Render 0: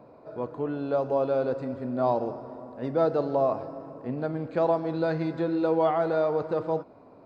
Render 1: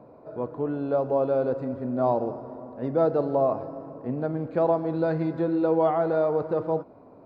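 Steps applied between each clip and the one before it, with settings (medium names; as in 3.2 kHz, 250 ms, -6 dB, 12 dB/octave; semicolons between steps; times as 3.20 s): treble shelf 2 kHz -11.5 dB; trim +2.5 dB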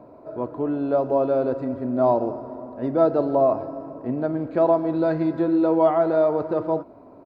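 comb 3.1 ms, depth 35%; trim +3 dB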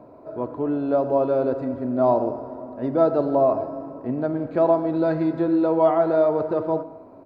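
reverberation RT60 0.95 s, pre-delay 70 ms, DRR 14.5 dB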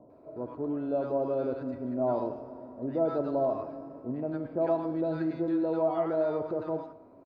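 bands offset in time lows, highs 100 ms, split 970 Hz; trim -8 dB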